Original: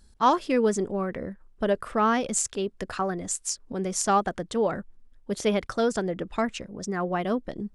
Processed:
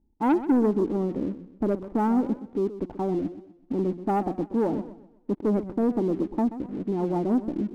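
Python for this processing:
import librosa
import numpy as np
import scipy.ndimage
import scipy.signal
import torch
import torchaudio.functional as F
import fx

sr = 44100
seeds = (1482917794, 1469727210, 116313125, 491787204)

y = fx.formant_cascade(x, sr, vowel='u')
y = fx.leveller(y, sr, passes=2)
y = fx.echo_warbled(y, sr, ms=126, feedback_pct=36, rate_hz=2.8, cents=154, wet_db=-13.5)
y = y * librosa.db_to_amplitude(6.5)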